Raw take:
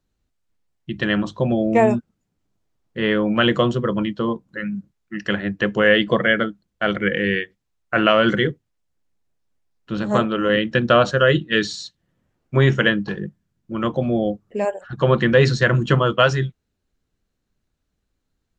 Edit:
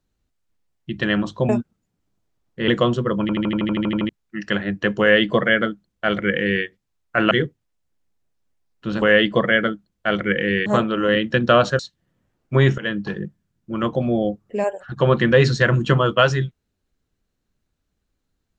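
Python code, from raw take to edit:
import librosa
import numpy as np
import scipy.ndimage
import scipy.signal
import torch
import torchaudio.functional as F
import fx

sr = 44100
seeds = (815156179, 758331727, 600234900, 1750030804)

y = fx.edit(x, sr, fx.cut(start_s=1.49, length_s=0.38),
    fx.cut(start_s=3.06, length_s=0.4),
    fx.stutter_over(start_s=3.99, slice_s=0.08, count=11),
    fx.duplicate(start_s=5.78, length_s=1.64, to_s=10.07),
    fx.cut(start_s=8.09, length_s=0.27),
    fx.cut(start_s=11.2, length_s=0.6),
    fx.fade_in_from(start_s=12.79, length_s=0.39, curve='qsin', floor_db=-21.0), tone=tone)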